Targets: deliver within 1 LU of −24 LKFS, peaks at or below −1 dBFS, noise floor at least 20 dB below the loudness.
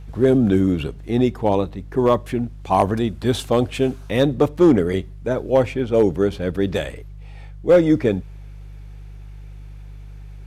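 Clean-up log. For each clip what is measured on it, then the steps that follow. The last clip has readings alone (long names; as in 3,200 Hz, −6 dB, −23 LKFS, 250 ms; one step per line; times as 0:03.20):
share of clipped samples 0.5%; peaks flattened at −6.5 dBFS; mains hum 50 Hz; hum harmonics up to 150 Hz; level of the hum −35 dBFS; integrated loudness −19.5 LKFS; sample peak −6.5 dBFS; target loudness −24.0 LKFS
→ clipped peaks rebuilt −6.5 dBFS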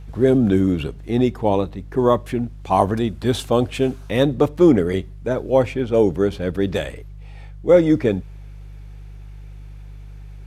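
share of clipped samples 0.0%; mains hum 50 Hz; hum harmonics up to 150 Hz; level of the hum −35 dBFS
→ hum removal 50 Hz, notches 3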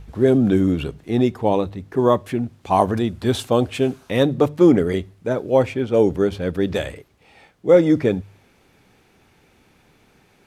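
mains hum none found; integrated loudness −19.5 LKFS; sample peak −2.5 dBFS; target loudness −24.0 LKFS
→ level −4.5 dB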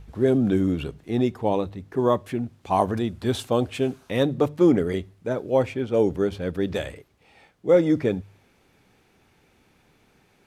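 integrated loudness −24.0 LKFS; sample peak −7.0 dBFS; background noise floor −62 dBFS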